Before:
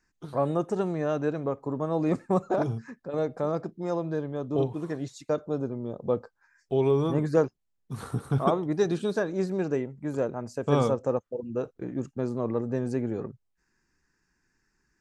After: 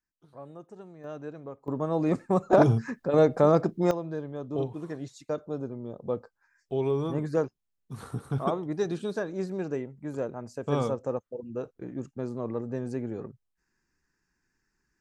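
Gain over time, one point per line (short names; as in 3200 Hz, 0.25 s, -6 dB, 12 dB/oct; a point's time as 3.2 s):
-18.5 dB
from 1.04 s -11.5 dB
from 1.68 s 0 dB
from 2.53 s +8 dB
from 3.91 s -4 dB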